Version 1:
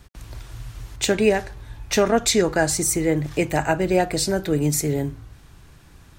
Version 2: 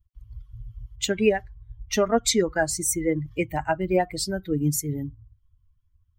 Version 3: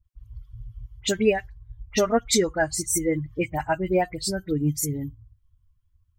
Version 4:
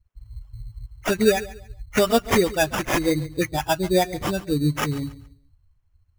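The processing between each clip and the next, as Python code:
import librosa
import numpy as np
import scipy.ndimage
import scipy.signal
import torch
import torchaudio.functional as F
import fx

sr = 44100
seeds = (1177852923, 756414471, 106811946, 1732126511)

y1 = fx.bin_expand(x, sr, power=2.0)
y2 = fx.dispersion(y1, sr, late='highs', ms=53.0, hz=2400.0)
y3 = fx.sample_hold(y2, sr, seeds[0], rate_hz=4200.0, jitter_pct=0)
y3 = fx.echo_feedback(y3, sr, ms=140, feedback_pct=29, wet_db=-17.5)
y3 = y3 * librosa.db_to_amplitude(2.5)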